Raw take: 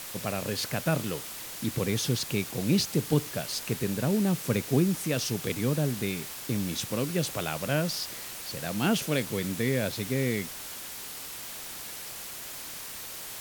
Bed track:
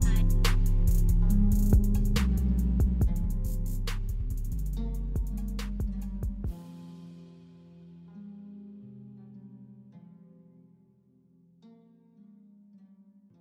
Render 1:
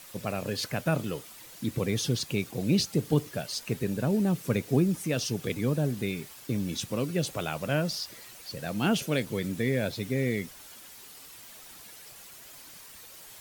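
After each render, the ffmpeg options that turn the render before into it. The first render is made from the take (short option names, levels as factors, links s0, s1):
-af "afftdn=nr=10:nf=-40"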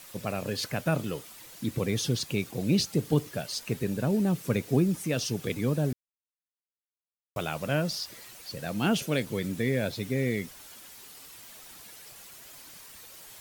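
-filter_complex "[0:a]asplit=3[s0][s1][s2];[s0]atrim=end=5.93,asetpts=PTS-STARTPTS,afade=t=out:st=5.926:d=0.004:c=hsin[s3];[s1]atrim=start=5.93:end=7.36,asetpts=PTS-STARTPTS,volume=0[s4];[s2]atrim=start=7.36,asetpts=PTS-STARTPTS,afade=t=in:d=0.004:c=hsin[s5];[s3][s4][s5]concat=n=3:v=0:a=1"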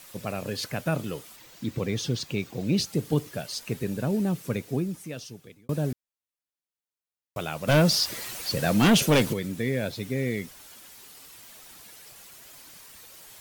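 -filter_complex "[0:a]asettb=1/sr,asplit=3[s0][s1][s2];[s0]atrim=end=1.364[s3];[s1]atrim=start=1.36:end=2.77,asetpts=PTS-STARTPTS,afade=t=in:d=0.004:c=qsin,afade=t=out:st=1.406:d=0.004:c=qsin,equalizer=f=11000:t=o:w=0.69:g=-10.5[s4];[s2]atrim=start=2.766[s5];[s3][s4]acrossfade=d=0.004:c1=hsin:c2=qsin[s6];[s6][s5]acrossfade=d=0.004:c1=qsin:c2=hsin,asplit=3[s7][s8][s9];[s7]afade=t=out:st=7.67:d=0.02[s10];[s8]aeval=exprs='0.2*sin(PI/2*2.24*val(0)/0.2)':c=same,afade=t=in:st=7.67:d=0.02,afade=t=out:st=9.32:d=0.02[s11];[s9]afade=t=in:st=9.32:d=0.02[s12];[s10][s11][s12]amix=inputs=3:normalize=0,asplit=2[s13][s14];[s13]atrim=end=5.69,asetpts=PTS-STARTPTS,afade=t=out:st=4.24:d=1.45[s15];[s14]atrim=start=5.69,asetpts=PTS-STARTPTS,afade=t=in:d=0.004:c=hsin[s16];[s15][s16]concat=n=2:v=0:a=1"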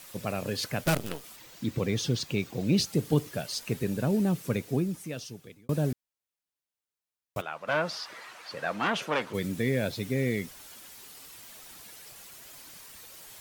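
-filter_complex "[0:a]asettb=1/sr,asplit=3[s0][s1][s2];[s0]atrim=end=0.844[s3];[s1]atrim=start=0.84:end=1.24,asetpts=PTS-STARTPTS,afade=t=in:d=0.004:c=qsin,afade=t=out:st=0.396:d=0.004:c=qsin,acrusher=bits=5:dc=4:mix=0:aa=0.000001[s4];[s2]atrim=start=1.236[s5];[s3][s4]acrossfade=d=0.004:c1=hsin:c2=qsin[s6];[s6][s5]acrossfade=d=0.004:c1=qsin:c2=hsin,asplit=3[s7][s8][s9];[s7]afade=t=out:st=7.4:d=0.02[s10];[s8]bandpass=f=1200:t=q:w=1.2,afade=t=in:st=7.4:d=0.02,afade=t=out:st=9.33:d=0.02[s11];[s9]afade=t=in:st=9.33:d=0.02[s12];[s10][s11][s12]amix=inputs=3:normalize=0"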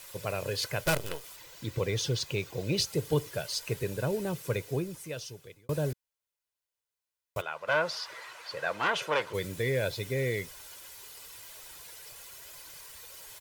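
-af "equalizer=f=220:w=1.8:g=-10.5,aecho=1:1:2:0.34"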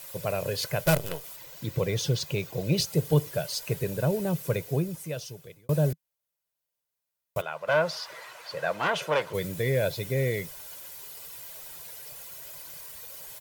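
-af "equalizer=f=160:t=o:w=0.67:g=9,equalizer=f=630:t=o:w=0.67:g=6,equalizer=f=16000:t=o:w=0.67:g=9"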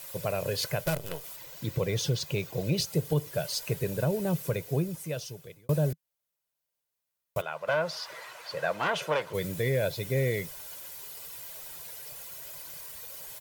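-af "alimiter=limit=0.141:level=0:latency=1:release=326"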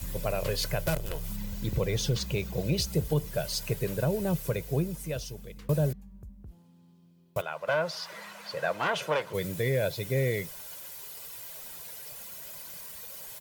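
-filter_complex "[1:a]volume=0.211[s0];[0:a][s0]amix=inputs=2:normalize=0"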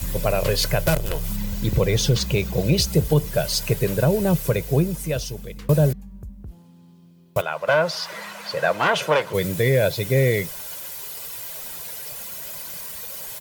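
-af "volume=2.82"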